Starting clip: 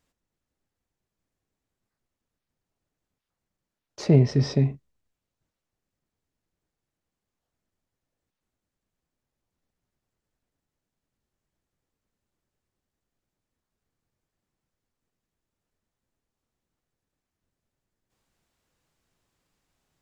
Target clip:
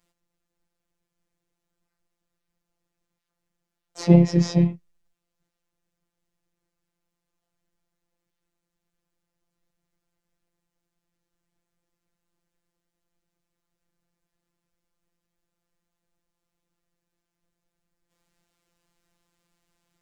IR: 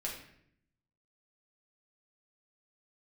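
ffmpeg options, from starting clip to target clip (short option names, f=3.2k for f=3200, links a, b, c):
-filter_complex "[0:a]asplit=2[a][b];[b]asetrate=55563,aresample=44100,atempo=0.793701,volume=-7dB[c];[a][c]amix=inputs=2:normalize=0,afftfilt=real='hypot(re,im)*cos(PI*b)':imag='0':win_size=1024:overlap=0.75,volume=5dB"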